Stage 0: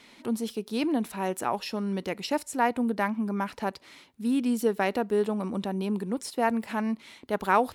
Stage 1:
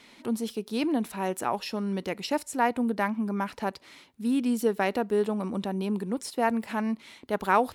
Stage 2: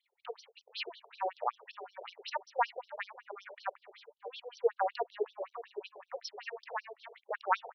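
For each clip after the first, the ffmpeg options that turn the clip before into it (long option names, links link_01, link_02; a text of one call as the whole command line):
ffmpeg -i in.wav -af anull out.wav
ffmpeg -i in.wav -filter_complex "[0:a]asplit=2[link_01][link_02];[link_02]adelay=588,lowpass=frequency=860:poles=1,volume=-12dB,asplit=2[link_03][link_04];[link_04]adelay=588,lowpass=frequency=860:poles=1,volume=0.47,asplit=2[link_05][link_06];[link_06]adelay=588,lowpass=frequency=860:poles=1,volume=0.47,asplit=2[link_07][link_08];[link_08]adelay=588,lowpass=frequency=860:poles=1,volume=0.47,asplit=2[link_09][link_10];[link_10]adelay=588,lowpass=frequency=860:poles=1,volume=0.47[link_11];[link_01][link_03][link_05][link_07][link_09][link_11]amix=inputs=6:normalize=0,anlmdn=0.0158,afftfilt=real='re*between(b*sr/1024,540*pow(4400/540,0.5+0.5*sin(2*PI*5.3*pts/sr))/1.41,540*pow(4400/540,0.5+0.5*sin(2*PI*5.3*pts/sr))*1.41)':imag='im*between(b*sr/1024,540*pow(4400/540,0.5+0.5*sin(2*PI*5.3*pts/sr))/1.41,540*pow(4400/540,0.5+0.5*sin(2*PI*5.3*pts/sr))*1.41)':win_size=1024:overlap=0.75" out.wav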